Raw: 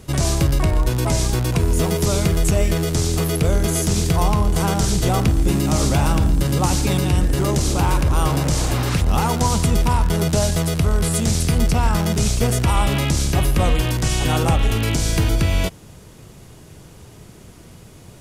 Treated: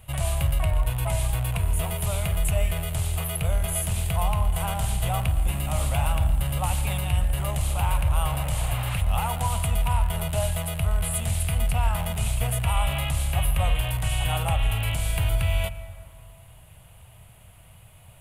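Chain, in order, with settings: EQ curve 110 Hz 0 dB, 260 Hz -18 dB, 380 Hz -20 dB, 640 Hz 0 dB, 1600 Hz -4 dB, 2900 Hz +3 dB, 5600 Hz -18 dB, 9600 Hz +3 dB; on a send: reverb RT60 2.4 s, pre-delay 98 ms, DRR 14 dB; on the sum: gain -5 dB

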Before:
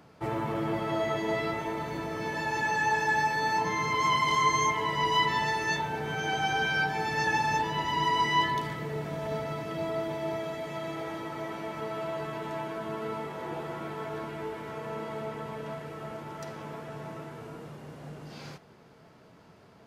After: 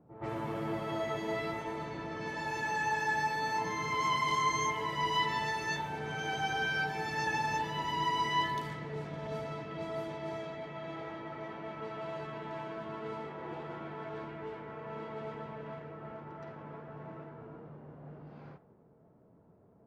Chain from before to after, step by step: reverse echo 0.12 s -12.5 dB; low-pass opened by the level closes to 550 Hz, open at -27.5 dBFS; gain -5.5 dB

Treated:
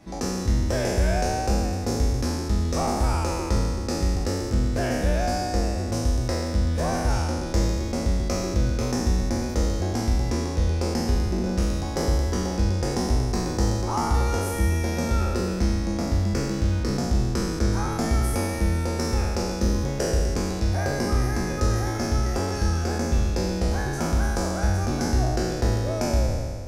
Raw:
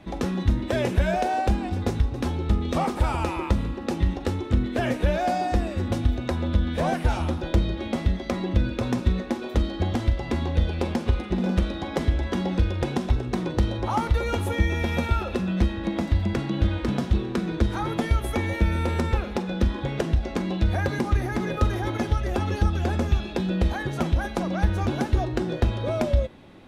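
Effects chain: spectral trails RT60 1.85 s; resonant high shelf 4300 Hz +6.5 dB, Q 3; gain -4.5 dB

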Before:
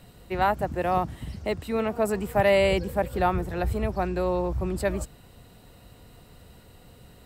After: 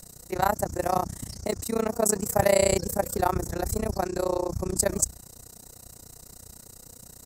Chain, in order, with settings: resonant high shelf 4400 Hz +13 dB, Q 3; notches 60/120/180 Hz; AM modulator 30 Hz, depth 95%; gain +3.5 dB

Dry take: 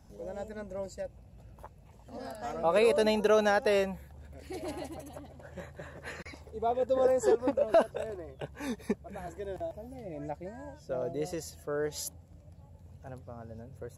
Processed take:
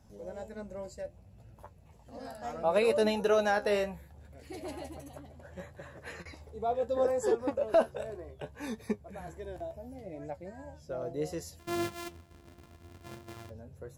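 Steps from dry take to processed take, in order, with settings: 11.59–13.5 sample sorter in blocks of 128 samples; flange 0.68 Hz, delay 8.4 ms, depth 6.7 ms, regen +55%; gain +2 dB

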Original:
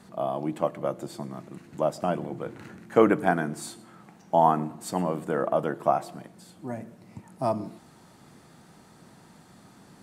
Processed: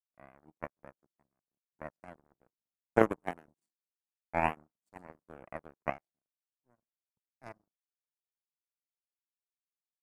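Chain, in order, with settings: band shelf 2100 Hz -12.5 dB; power-law curve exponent 3; gain +1.5 dB

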